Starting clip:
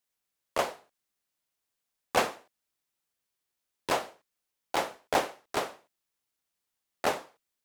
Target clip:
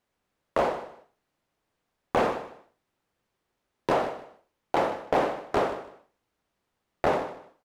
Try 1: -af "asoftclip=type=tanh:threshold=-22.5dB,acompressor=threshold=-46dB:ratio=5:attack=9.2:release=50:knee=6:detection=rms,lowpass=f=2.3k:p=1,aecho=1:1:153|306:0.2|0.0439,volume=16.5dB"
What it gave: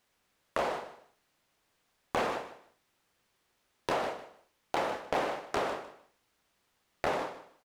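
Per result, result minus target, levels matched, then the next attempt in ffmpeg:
compressor: peak gain reduction +9 dB; 2000 Hz band +3.5 dB
-af "asoftclip=type=tanh:threshold=-22.5dB,acompressor=threshold=-34.5dB:ratio=5:attack=9.2:release=50:knee=6:detection=rms,lowpass=f=2.3k:p=1,aecho=1:1:153|306:0.2|0.0439,volume=16.5dB"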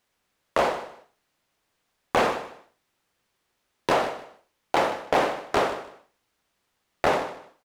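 2000 Hz band +3.0 dB
-af "asoftclip=type=tanh:threshold=-22.5dB,acompressor=threshold=-34.5dB:ratio=5:attack=9.2:release=50:knee=6:detection=rms,lowpass=f=800:p=1,aecho=1:1:153|306:0.2|0.0439,volume=16.5dB"

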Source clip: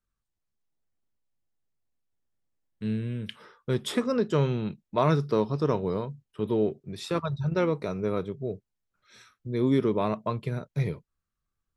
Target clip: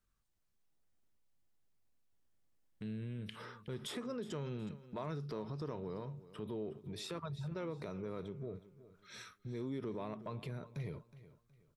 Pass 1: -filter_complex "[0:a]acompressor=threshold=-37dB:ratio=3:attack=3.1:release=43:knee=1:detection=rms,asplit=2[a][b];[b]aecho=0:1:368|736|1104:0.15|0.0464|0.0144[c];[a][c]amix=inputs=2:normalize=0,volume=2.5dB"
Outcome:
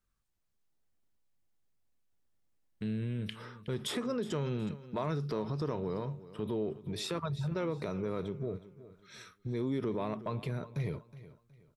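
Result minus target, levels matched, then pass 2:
compressor: peak gain reduction -7.5 dB
-filter_complex "[0:a]acompressor=threshold=-48dB:ratio=3:attack=3.1:release=43:knee=1:detection=rms,asplit=2[a][b];[b]aecho=0:1:368|736|1104:0.15|0.0464|0.0144[c];[a][c]amix=inputs=2:normalize=0,volume=2.5dB"

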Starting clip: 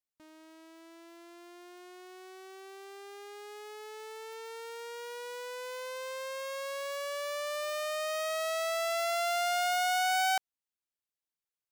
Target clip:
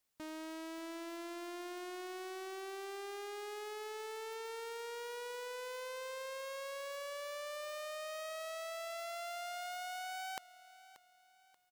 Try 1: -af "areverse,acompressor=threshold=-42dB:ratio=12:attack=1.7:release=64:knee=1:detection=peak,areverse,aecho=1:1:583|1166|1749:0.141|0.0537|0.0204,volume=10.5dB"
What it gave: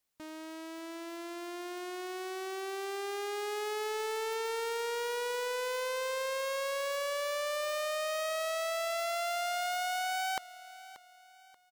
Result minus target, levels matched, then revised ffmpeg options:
compressor: peak gain reduction -9.5 dB
-af "areverse,acompressor=threshold=-52.5dB:ratio=12:attack=1.7:release=64:knee=1:detection=peak,areverse,aecho=1:1:583|1166|1749:0.141|0.0537|0.0204,volume=10.5dB"

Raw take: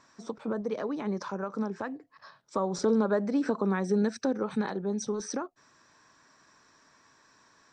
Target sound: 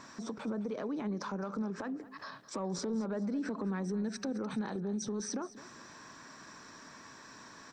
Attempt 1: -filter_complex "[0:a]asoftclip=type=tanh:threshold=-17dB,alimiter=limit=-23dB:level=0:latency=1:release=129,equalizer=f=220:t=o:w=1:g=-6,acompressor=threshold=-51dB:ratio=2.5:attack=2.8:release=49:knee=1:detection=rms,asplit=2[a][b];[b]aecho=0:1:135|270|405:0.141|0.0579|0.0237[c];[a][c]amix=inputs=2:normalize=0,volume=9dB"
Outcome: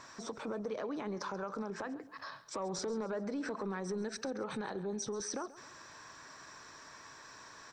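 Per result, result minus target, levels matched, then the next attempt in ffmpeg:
echo 77 ms early; 250 Hz band -3.5 dB
-filter_complex "[0:a]asoftclip=type=tanh:threshold=-17dB,alimiter=limit=-23dB:level=0:latency=1:release=129,equalizer=f=220:t=o:w=1:g=-6,acompressor=threshold=-51dB:ratio=2.5:attack=2.8:release=49:knee=1:detection=rms,asplit=2[a][b];[b]aecho=0:1:212|424|636:0.141|0.0579|0.0237[c];[a][c]amix=inputs=2:normalize=0,volume=9dB"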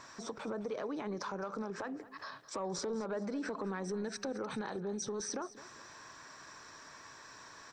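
250 Hz band -3.5 dB
-filter_complex "[0:a]asoftclip=type=tanh:threshold=-17dB,alimiter=limit=-23dB:level=0:latency=1:release=129,equalizer=f=220:t=o:w=1:g=5.5,acompressor=threshold=-51dB:ratio=2.5:attack=2.8:release=49:knee=1:detection=rms,asplit=2[a][b];[b]aecho=0:1:212|424|636:0.141|0.0579|0.0237[c];[a][c]amix=inputs=2:normalize=0,volume=9dB"

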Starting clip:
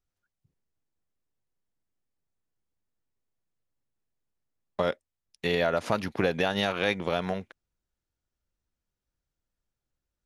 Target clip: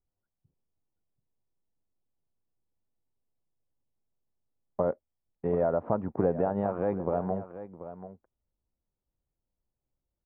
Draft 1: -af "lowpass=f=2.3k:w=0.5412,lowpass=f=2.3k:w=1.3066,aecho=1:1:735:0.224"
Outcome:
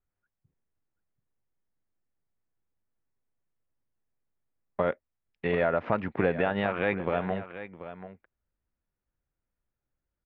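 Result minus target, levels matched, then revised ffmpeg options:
2000 Hz band +16.0 dB
-af "lowpass=f=1k:w=0.5412,lowpass=f=1k:w=1.3066,aecho=1:1:735:0.224"

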